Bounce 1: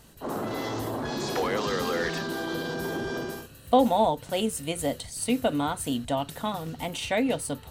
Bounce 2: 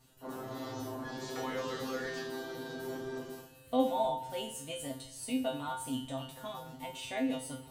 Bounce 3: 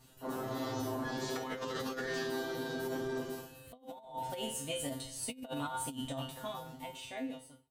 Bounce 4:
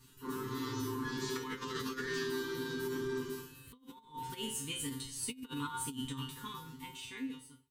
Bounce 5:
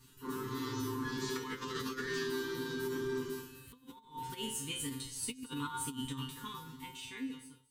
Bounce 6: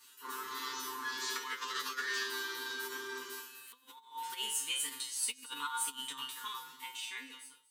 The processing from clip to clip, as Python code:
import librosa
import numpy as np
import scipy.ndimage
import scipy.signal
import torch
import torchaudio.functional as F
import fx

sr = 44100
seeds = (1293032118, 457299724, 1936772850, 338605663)

y1 = fx.comb_fb(x, sr, f0_hz=130.0, decay_s=0.32, harmonics='all', damping=0.0, mix_pct=100)
y1 = fx.rev_fdn(y1, sr, rt60_s=0.85, lf_ratio=0.95, hf_ratio=0.95, size_ms=20.0, drr_db=9.0)
y1 = y1 * librosa.db_to_amplitude(1.0)
y2 = fx.fade_out_tail(y1, sr, length_s=1.61)
y2 = fx.over_compress(y2, sr, threshold_db=-39.0, ratio=-0.5)
y2 = y2 * librosa.db_to_amplitude(1.0)
y3 = scipy.signal.sosfilt(scipy.signal.cheby1(3, 1.0, [440.0, 950.0], 'bandstop', fs=sr, output='sos'), y2)
y3 = y3 * librosa.db_to_amplitude(1.0)
y4 = y3 + 10.0 ** (-18.0 / 20.0) * np.pad(y3, (int(233 * sr / 1000.0), 0))[:len(y3)]
y5 = scipy.signal.sosfilt(scipy.signal.butter(2, 950.0, 'highpass', fs=sr, output='sos'), y4)
y5 = y5 * librosa.db_to_amplitude(5.0)